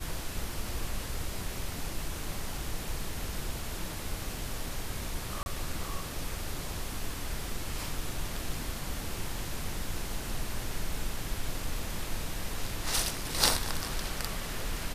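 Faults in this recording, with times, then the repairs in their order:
5.43–5.46 s: dropout 31 ms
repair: interpolate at 5.43 s, 31 ms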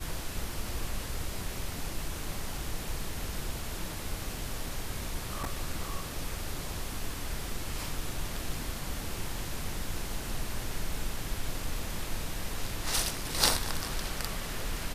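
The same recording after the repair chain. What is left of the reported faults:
nothing left

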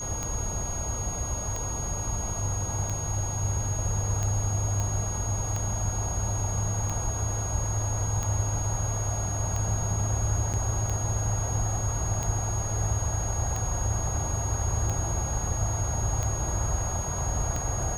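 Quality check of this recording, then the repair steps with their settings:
tick 45 rpm -18 dBFS
whine 6.6 kHz -33 dBFS
4.80 s: pop -18 dBFS
10.53–10.54 s: dropout 7.5 ms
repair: de-click; band-stop 6.6 kHz, Q 30; interpolate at 10.53 s, 7.5 ms

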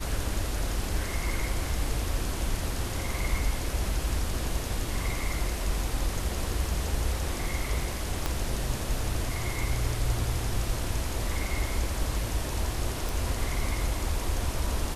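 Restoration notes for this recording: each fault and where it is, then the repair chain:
8.26 s: pop -13 dBFS
13.09 s: pop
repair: de-click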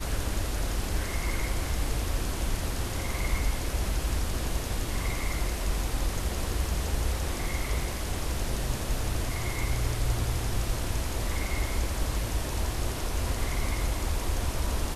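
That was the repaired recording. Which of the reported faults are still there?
8.26 s: pop

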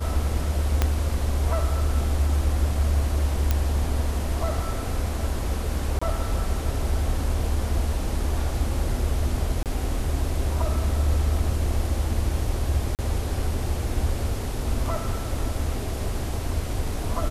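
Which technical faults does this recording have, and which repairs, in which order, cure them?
0.82 s: pop -7 dBFS
3.51 s: pop -8 dBFS
5.99–6.01 s: dropout 25 ms
9.63–9.66 s: dropout 28 ms
12.95–12.99 s: dropout 38 ms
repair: de-click; interpolate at 5.99 s, 25 ms; interpolate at 9.63 s, 28 ms; interpolate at 12.95 s, 38 ms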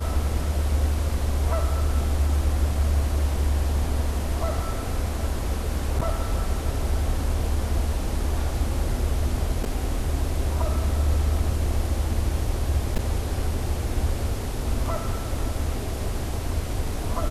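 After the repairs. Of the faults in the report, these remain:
0.82 s: pop

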